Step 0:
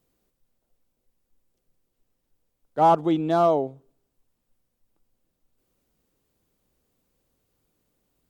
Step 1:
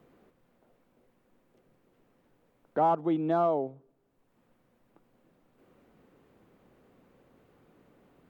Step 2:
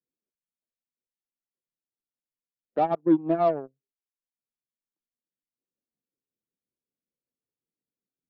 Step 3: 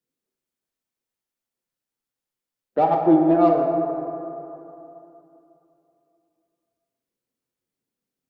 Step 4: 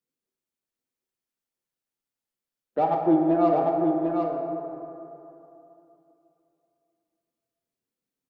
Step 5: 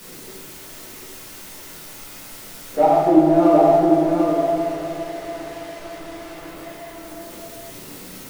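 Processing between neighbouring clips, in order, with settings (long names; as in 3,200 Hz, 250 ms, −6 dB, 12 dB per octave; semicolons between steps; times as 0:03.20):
multiband upward and downward compressor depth 70%; level −6 dB
rotating-speaker cabinet horn 6 Hz; harmonic generator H 5 −24 dB, 7 −16 dB, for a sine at −17.5 dBFS; every bin expanded away from the loudest bin 1.5 to 1; level +6.5 dB
in parallel at −12 dB: soft clipping −28.5 dBFS, distortion −5 dB; on the sum: dense smooth reverb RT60 3 s, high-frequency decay 0.4×, DRR 1 dB; level +3.5 dB
single-tap delay 748 ms −4.5 dB; level −4.5 dB
converter with a step at zero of −36 dBFS; rectangular room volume 100 cubic metres, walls mixed, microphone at 1.5 metres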